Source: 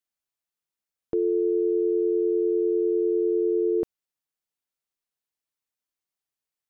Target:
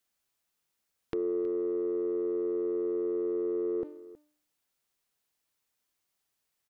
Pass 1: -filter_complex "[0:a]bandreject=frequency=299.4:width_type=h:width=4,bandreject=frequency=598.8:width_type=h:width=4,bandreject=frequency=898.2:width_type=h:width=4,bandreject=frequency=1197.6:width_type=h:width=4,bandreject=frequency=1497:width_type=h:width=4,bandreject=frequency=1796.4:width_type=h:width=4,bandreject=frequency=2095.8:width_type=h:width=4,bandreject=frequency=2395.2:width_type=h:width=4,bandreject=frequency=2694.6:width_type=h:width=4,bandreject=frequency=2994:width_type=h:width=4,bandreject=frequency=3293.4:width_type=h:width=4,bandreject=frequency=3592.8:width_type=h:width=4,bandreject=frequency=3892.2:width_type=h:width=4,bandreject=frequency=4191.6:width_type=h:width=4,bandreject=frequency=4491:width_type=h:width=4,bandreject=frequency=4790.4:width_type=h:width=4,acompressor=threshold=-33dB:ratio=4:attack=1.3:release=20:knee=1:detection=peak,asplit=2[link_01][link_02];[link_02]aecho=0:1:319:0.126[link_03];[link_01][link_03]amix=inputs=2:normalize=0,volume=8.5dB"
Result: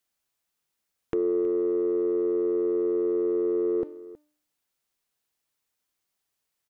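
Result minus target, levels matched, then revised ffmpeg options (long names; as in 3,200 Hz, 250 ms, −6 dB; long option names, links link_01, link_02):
downward compressor: peak gain reduction −5.5 dB
-filter_complex "[0:a]bandreject=frequency=299.4:width_type=h:width=4,bandreject=frequency=598.8:width_type=h:width=4,bandreject=frequency=898.2:width_type=h:width=4,bandreject=frequency=1197.6:width_type=h:width=4,bandreject=frequency=1497:width_type=h:width=4,bandreject=frequency=1796.4:width_type=h:width=4,bandreject=frequency=2095.8:width_type=h:width=4,bandreject=frequency=2395.2:width_type=h:width=4,bandreject=frequency=2694.6:width_type=h:width=4,bandreject=frequency=2994:width_type=h:width=4,bandreject=frequency=3293.4:width_type=h:width=4,bandreject=frequency=3592.8:width_type=h:width=4,bandreject=frequency=3892.2:width_type=h:width=4,bandreject=frequency=4191.6:width_type=h:width=4,bandreject=frequency=4491:width_type=h:width=4,bandreject=frequency=4790.4:width_type=h:width=4,acompressor=threshold=-40.5dB:ratio=4:attack=1.3:release=20:knee=1:detection=peak,asplit=2[link_01][link_02];[link_02]aecho=0:1:319:0.126[link_03];[link_01][link_03]amix=inputs=2:normalize=0,volume=8.5dB"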